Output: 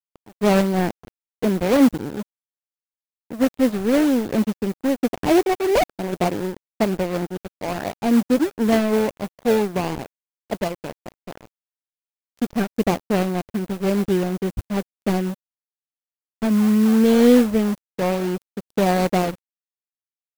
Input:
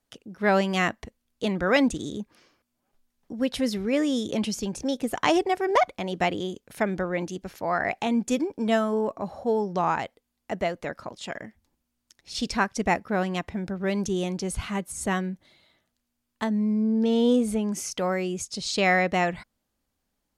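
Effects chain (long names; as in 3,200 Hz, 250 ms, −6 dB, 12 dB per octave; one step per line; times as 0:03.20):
running median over 41 samples
low-shelf EQ 94 Hz −5.5 dB
noise that follows the level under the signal 24 dB
in parallel at −11.5 dB: sample-and-hold swept by an LFO 31×, swing 100% 3.8 Hz
on the sum: dead-zone distortion −37 dBFS
level +8.5 dB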